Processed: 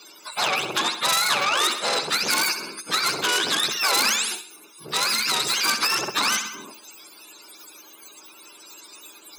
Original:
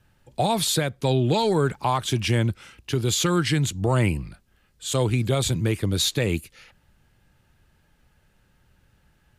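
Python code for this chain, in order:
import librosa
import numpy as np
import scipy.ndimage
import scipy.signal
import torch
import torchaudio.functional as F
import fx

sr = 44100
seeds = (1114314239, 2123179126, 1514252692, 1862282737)

p1 = fx.octave_mirror(x, sr, pivot_hz=720.0)
p2 = 10.0 ** (-21.5 / 20.0) * np.tanh(p1 / 10.0 ** (-21.5 / 20.0))
p3 = scipy.signal.sosfilt(scipy.signal.butter(4, 460.0, 'highpass', fs=sr, output='sos'), p2)
p4 = p3 + 0.6 * np.pad(p3, (int(0.8 * sr / 1000.0), 0))[:len(p3)]
p5 = p4 + fx.echo_feedback(p4, sr, ms=65, feedback_pct=45, wet_db=-16, dry=0)
p6 = fx.vibrato(p5, sr, rate_hz=7.8, depth_cents=18.0)
p7 = fx.peak_eq(p6, sr, hz=820.0, db=-8.0, octaves=2.3, at=(4.9, 5.57))
p8 = fx.spectral_comp(p7, sr, ratio=2.0)
y = p8 * librosa.db_to_amplitude(7.0)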